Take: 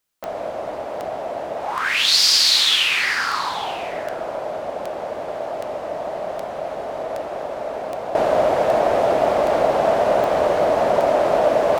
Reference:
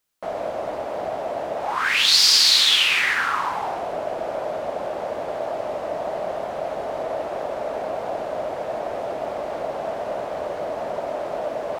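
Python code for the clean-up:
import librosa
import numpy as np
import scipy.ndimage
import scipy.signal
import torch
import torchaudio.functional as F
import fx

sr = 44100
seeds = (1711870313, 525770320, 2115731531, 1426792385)

y = fx.fix_declick_ar(x, sr, threshold=10.0)
y = fx.fix_echo_inverse(y, sr, delay_ms=884, level_db=-17.5)
y = fx.fix_level(y, sr, at_s=8.15, step_db=-10.5)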